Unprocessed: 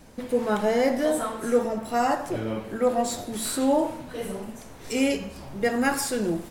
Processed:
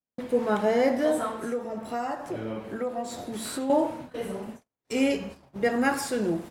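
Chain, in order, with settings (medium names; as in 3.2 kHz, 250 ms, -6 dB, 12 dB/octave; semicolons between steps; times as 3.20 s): high-pass 110 Hz 6 dB/octave; gate -39 dBFS, range -46 dB; treble shelf 4.3 kHz -7.5 dB; 1.30–3.70 s: compression 3:1, threshold -30 dBFS, peak gain reduction 10.5 dB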